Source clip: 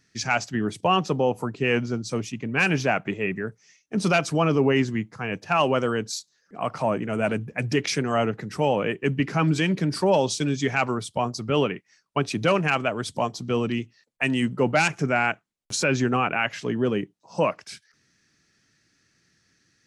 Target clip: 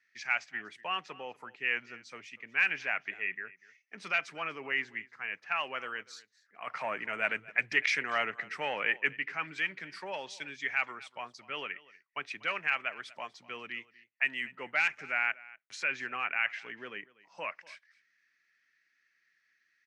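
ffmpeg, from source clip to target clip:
-filter_complex "[0:a]asettb=1/sr,asplit=3[a][b][c];[a]atrim=end=6.674[d];[b]atrim=start=6.67:end=9.13,asetpts=PTS-STARTPTS,afade=t=in:d=0.004:c=qsin,afade=t=out:st=2.456:d=0.004:c=qsin,acontrast=71[e];[c]atrim=start=9.126[f];[d][e]acrossfade=d=0.004:c1=hsin:c2=qsin[g];[g][f]acrossfade=d=0.004:c1=qsin:c2=hsin,bandpass=f=2k:t=q:w=3.1:csg=0,aecho=1:1:242:0.0891"

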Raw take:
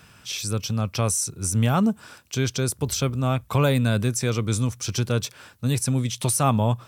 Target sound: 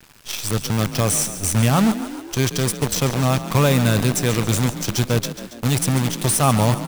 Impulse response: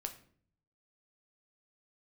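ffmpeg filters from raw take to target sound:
-filter_complex "[0:a]bandreject=f=1.4k:w=16,acrusher=bits=5:dc=4:mix=0:aa=0.000001,asplit=2[a][b];[b]asplit=7[c][d][e][f][g][h][i];[c]adelay=139,afreqshift=38,volume=-12.5dB[j];[d]adelay=278,afreqshift=76,volume=-17.1dB[k];[e]adelay=417,afreqshift=114,volume=-21.7dB[l];[f]adelay=556,afreqshift=152,volume=-26.2dB[m];[g]adelay=695,afreqshift=190,volume=-30.8dB[n];[h]adelay=834,afreqshift=228,volume=-35.4dB[o];[i]adelay=973,afreqshift=266,volume=-40dB[p];[j][k][l][m][n][o][p]amix=inputs=7:normalize=0[q];[a][q]amix=inputs=2:normalize=0,volume=3.5dB"

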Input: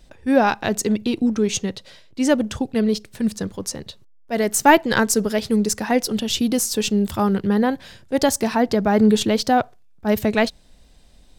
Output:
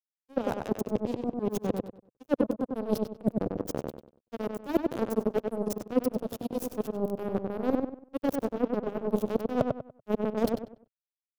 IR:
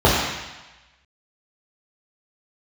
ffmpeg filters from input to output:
-filter_complex "[0:a]areverse,acompressor=threshold=-28dB:ratio=12,areverse,acrusher=bits=3:mix=0:aa=0.5,equalizer=f=125:t=o:w=1:g=6,equalizer=f=250:t=o:w=1:g=7,equalizer=f=500:t=o:w=1:g=9,equalizer=f=1k:t=o:w=1:g=-3,equalizer=f=2k:t=o:w=1:g=-10,equalizer=f=4k:t=o:w=1:g=-7,equalizer=f=8k:t=o:w=1:g=-8,asplit=2[a][b];[b]adelay=96,lowpass=f=2.5k:p=1,volume=-3.5dB,asplit=2[c][d];[d]adelay=96,lowpass=f=2.5k:p=1,volume=0.31,asplit=2[e][f];[f]adelay=96,lowpass=f=2.5k:p=1,volume=0.31,asplit=2[g][h];[h]adelay=96,lowpass=f=2.5k:p=1,volume=0.31[i];[a][c][e][g][i]amix=inputs=5:normalize=0"

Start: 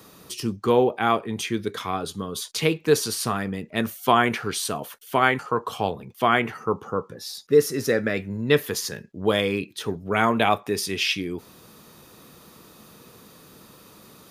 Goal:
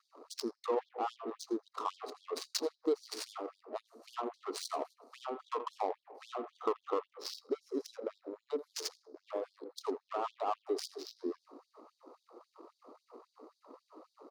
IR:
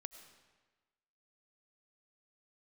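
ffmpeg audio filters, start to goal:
-filter_complex "[0:a]asplit=2[a][b];[1:a]atrim=start_sample=2205[c];[b][c]afir=irnorm=-1:irlink=0,volume=-3.5dB[d];[a][d]amix=inputs=2:normalize=0,acompressor=threshold=-26dB:ratio=12,asuperstop=centerf=2300:order=20:qfactor=0.88,aecho=1:1:83:0.211,adynamicsmooth=sensitivity=5.5:basefreq=1k,afftfilt=real='re*gte(b*sr/1024,230*pow(3300/230,0.5+0.5*sin(2*PI*3.7*pts/sr)))':imag='im*gte(b*sr/1024,230*pow(3300/230,0.5+0.5*sin(2*PI*3.7*pts/sr)))':win_size=1024:overlap=0.75,volume=-1dB"

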